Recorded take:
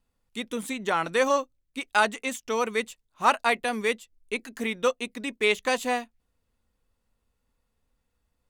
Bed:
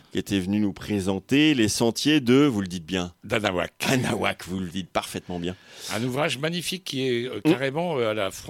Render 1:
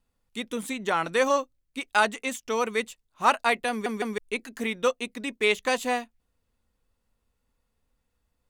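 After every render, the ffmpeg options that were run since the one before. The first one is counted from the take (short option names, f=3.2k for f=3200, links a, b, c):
-filter_complex "[0:a]asplit=4[a][b][c][d];[a]atrim=end=3.862[e];[b]atrim=start=3.698:end=3.862[f];[c]atrim=start=3.698:end=3.862[g];[d]atrim=start=4.178[h];[e][f]acrossfade=d=0.004:c1=hsin:c2=hsin[i];[i][g]acrossfade=d=0.004:c1=hsin:c2=hsin[j];[j][h]acrossfade=d=0.004:c1=hsin:c2=hsin"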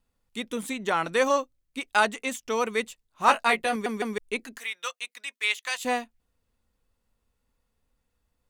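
-filter_complex "[0:a]asettb=1/sr,asplit=3[a][b][c];[a]atrim=end=3.264[d];[b]atrim=start=3.26:end=3.76,asetpts=PTS-STARTPTS,afade=t=in:d=0.004:c=qsin,afade=t=out:st=0.496:d=0.004:c=qsin,asplit=2[e][f];[f]adelay=18,volume=-4dB[g];[e][g]amix=inputs=2:normalize=0,atrim=end_sample=22050[h];[c]atrim=start=3.756[i];[d][h]acrossfade=d=0.004:c1=hsin:c2=qsin[j];[j][i]acrossfade=d=0.004:c1=qsin:c2=hsin,asettb=1/sr,asplit=3[k][l][m];[k]atrim=end=4.584[n];[l]atrim=start=4.58:end=5.85,asetpts=PTS-STARTPTS,afade=t=in:d=0.004:c=qsin,afade=t=out:st=1.266:d=0.004:c=qsin,highpass=1.5k[o];[m]atrim=start=5.846[p];[n][o]acrossfade=d=0.004:c1=hsin:c2=qsin[q];[q][p]acrossfade=d=0.004:c1=qsin:c2=hsin"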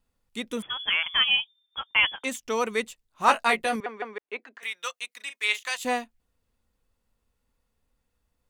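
-filter_complex "[0:a]asettb=1/sr,asplit=3[a][b][c];[a]atrim=end=0.624[d];[b]atrim=start=0.62:end=2.24,asetpts=PTS-STARTPTS,afade=t=in:d=0.004:c=qsin,afade=t=out:st=1.616:d=0.004:c=qsin,lowpass=f=3.1k:t=q:w=0.5098,lowpass=f=3.1k:t=q:w=0.6013,lowpass=f=3.1k:t=q:w=0.9,lowpass=f=3.1k:t=q:w=2.563,afreqshift=-3600[e];[c]atrim=start=2.236[f];[d][e]acrossfade=d=0.004:c1=hsin:c2=qsin[g];[g][f]acrossfade=d=0.004:c1=qsin:c2=hsin,asettb=1/sr,asplit=3[h][i][j];[h]atrim=end=3.804[k];[i]atrim=start=3.8:end=4.63,asetpts=PTS-STARTPTS,afade=t=in:d=0.004:c=qsin,afade=t=out:st=0.826:d=0.004:c=qsin,highpass=540,lowpass=2.1k[l];[j]atrim=start=4.626[m];[k][l]acrossfade=d=0.004:c1=hsin:c2=qsin[n];[n][m]acrossfade=d=0.004:c1=qsin:c2=hsin,asettb=1/sr,asplit=3[o][p][q];[o]atrim=end=5.164[r];[p]atrim=start=5.16:end=5.68,asetpts=PTS-STARTPTS,afade=t=in:d=0.004:c=qsin,afade=t=out:st=0.516:d=0.004:c=qsin,asplit=2[s][t];[t]adelay=38,volume=-10dB[u];[s][u]amix=inputs=2:normalize=0,atrim=end_sample=22932[v];[q]atrim=start=5.676[w];[r][v]acrossfade=d=0.004:c1=hsin:c2=qsin[x];[x][w]acrossfade=d=0.004:c1=qsin:c2=hsin"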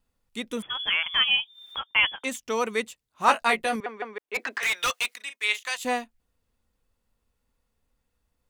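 -filter_complex "[0:a]asettb=1/sr,asplit=3[a][b][c];[a]atrim=end=0.754[d];[b]atrim=start=0.75:end=1.84,asetpts=PTS-STARTPTS,afade=t=in:d=0.004:c=qsin,afade=t=out:st=1.086:d=0.004:c=qsin,acompressor=mode=upward:threshold=-26dB:ratio=2.5:attack=3.2:release=140:knee=2.83:detection=peak[e];[c]atrim=start=1.836[f];[d][e]acrossfade=d=0.004:c1=hsin:c2=qsin[g];[g][f]acrossfade=d=0.004:c1=qsin:c2=hsin,asettb=1/sr,asplit=3[h][i][j];[h]atrim=end=2.444[k];[i]atrim=start=2.44:end=3.42,asetpts=PTS-STARTPTS,afade=t=in:d=0.004:c=qsin,afade=t=out:st=0.976:d=0.004:c=qsin,highpass=56[l];[j]atrim=start=3.416[m];[k][l]acrossfade=d=0.004:c1=hsin:c2=qsin[n];[n][m]acrossfade=d=0.004:c1=qsin:c2=hsin,asplit=3[o][p][q];[o]afade=t=out:st=4.34:d=0.02[r];[p]asplit=2[s][t];[t]highpass=f=720:p=1,volume=27dB,asoftclip=type=tanh:threshold=-17.5dB[u];[s][u]amix=inputs=2:normalize=0,lowpass=f=7.1k:p=1,volume=-6dB,afade=t=in:st=4.34:d=0.02,afade=t=out:st=5.14:d=0.02[v];[q]afade=t=in:st=5.14:d=0.02[w];[r][v][w]amix=inputs=3:normalize=0"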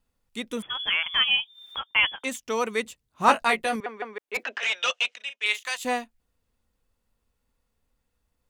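-filter_complex "[0:a]asettb=1/sr,asplit=3[a][b][c];[a]atrim=end=2.854[d];[b]atrim=start=2.85:end=3.45,asetpts=PTS-STARTPTS,afade=t=in:d=0.004:c=qsin,afade=t=out:st=0.596:d=0.004:c=qsin,lowshelf=f=350:g=10[e];[c]atrim=start=3.446[f];[d][e]acrossfade=d=0.004:c1=hsin:c2=qsin[g];[g][f]acrossfade=d=0.004:c1=qsin:c2=hsin,asettb=1/sr,asplit=3[h][i][j];[h]atrim=end=4.434[k];[i]atrim=start=4.43:end=5.46,asetpts=PTS-STARTPTS,afade=t=in:d=0.004:c=qsin,afade=t=out:st=1.026:d=0.004:c=qsin,highpass=240,equalizer=f=300:t=q:w=4:g=-9,equalizer=f=590:t=q:w=4:g=6,equalizer=f=1.1k:t=q:w=4:g=-5,equalizer=f=2k:t=q:w=4:g=-5,equalizer=f=2.9k:t=q:w=4:g=8,equalizer=f=4.5k:t=q:w=4:g=-7,lowpass=f=6.3k:w=0.5412,lowpass=f=6.3k:w=1.3066[l];[j]atrim=start=5.456[m];[k][l]acrossfade=d=0.004:c1=hsin:c2=qsin[n];[n][m]acrossfade=d=0.004:c1=qsin:c2=hsin"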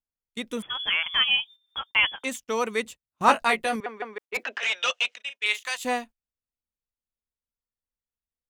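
-af "agate=range=-24dB:threshold=-41dB:ratio=16:detection=peak"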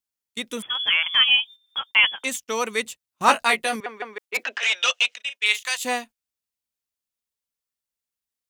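-af "highpass=f=120:p=1,highshelf=f=2.2k:g=8"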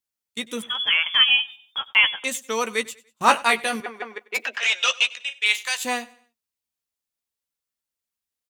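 -filter_complex "[0:a]asplit=2[a][b];[b]adelay=13,volume=-11dB[c];[a][c]amix=inputs=2:normalize=0,aecho=1:1:96|192|288:0.0841|0.0311|0.0115"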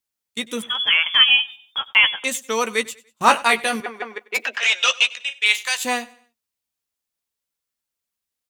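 -af "volume=3dB,alimiter=limit=-2dB:level=0:latency=1"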